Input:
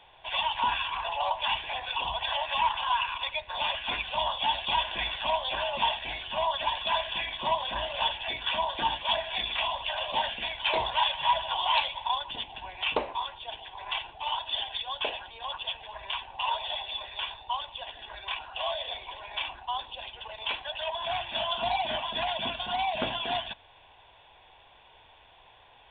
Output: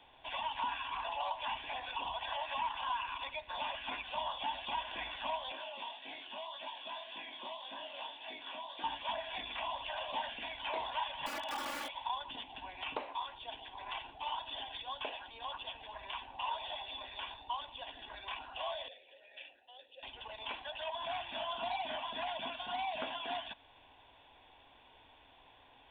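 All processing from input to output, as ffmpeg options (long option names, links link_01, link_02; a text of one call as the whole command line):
ffmpeg -i in.wav -filter_complex "[0:a]asettb=1/sr,asplit=3[link_01][link_02][link_03];[link_01]atrim=end=5.524[link_04];[link_02]atrim=start=5.52:end=8.84,asetpts=PTS-STARTPTS,afade=type=in:duration=0.004:curve=qsin,afade=type=out:start_time=3.316:duration=0.004:curve=qsin,highpass=300,flanger=delay=18.5:depth=5.5:speed=1.8,acrossover=split=1100|2300[link_05][link_06][link_07];[link_05]acompressor=threshold=-41dB:ratio=4[link_08];[link_06]acompressor=threshold=-52dB:ratio=4[link_09];[link_07]acompressor=threshold=-41dB:ratio=4[link_10];[link_08][link_09][link_10]amix=inputs=3:normalize=0[link_11];[link_03]atrim=start=8.836[link_12];[link_04][link_11]acrossfade=duration=0.004:curve1=hsin:curve2=qsin[link_13];[link_13][link_12]acrossfade=duration=0.004:curve1=qsin:curve2=hsin,asettb=1/sr,asplit=3[link_14][link_15][link_16];[link_14]atrim=end=11.264[link_17];[link_15]atrim=start=11.26:end=11.9,asetpts=PTS-STARTPTS,afade=type=in:duration=0.004:curve=qsin,afade=type=out:start_time=0.636:duration=0.004:curve=qsin,highpass=frequency=98:poles=1,aeval=exprs='(mod(18.8*val(0)+1,2)-1)/18.8':channel_layout=same,aecho=1:1:3.5:0.99,atrim=end_sample=28224[link_18];[link_16]atrim=start=11.896[link_19];[link_17][link_18]acrossfade=duration=0.004:curve1=hsin:curve2=qsin[link_20];[link_20][link_19]acrossfade=duration=0.004:curve1=qsin:curve2=hsin,asettb=1/sr,asplit=3[link_21][link_22][link_23];[link_21]atrim=end=18.884[link_24];[link_22]atrim=start=18.88:end=20.03,asetpts=PTS-STARTPTS,afade=type=in:duration=0.004:curve=qsin,afade=type=out:start_time=1.146:duration=0.004:curve=qsin,asplit=3[link_25][link_26][link_27];[link_25]bandpass=frequency=530:width_type=q:width=8,volume=0dB[link_28];[link_26]bandpass=frequency=1840:width_type=q:width=8,volume=-6dB[link_29];[link_27]bandpass=frequency=2480:width_type=q:width=8,volume=-9dB[link_30];[link_28][link_29][link_30]amix=inputs=3:normalize=0,equalizer=frequency=4000:width_type=o:width=0.36:gain=9.5[link_31];[link_23]atrim=start=20.026[link_32];[link_24][link_31]acrossfade=duration=0.004:curve1=hsin:curve2=qsin[link_33];[link_33][link_32]acrossfade=duration=0.004:curve1=qsin:curve2=hsin,acrossover=split=2800[link_34][link_35];[link_35]acompressor=threshold=-42dB:ratio=4:attack=1:release=60[link_36];[link_34][link_36]amix=inputs=2:normalize=0,equalizer=frequency=270:width=3.3:gain=13.5,acrossover=split=530|1200[link_37][link_38][link_39];[link_37]acompressor=threshold=-50dB:ratio=4[link_40];[link_38]acompressor=threshold=-32dB:ratio=4[link_41];[link_39]acompressor=threshold=-35dB:ratio=4[link_42];[link_40][link_41][link_42]amix=inputs=3:normalize=0,volume=-5.5dB" out.wav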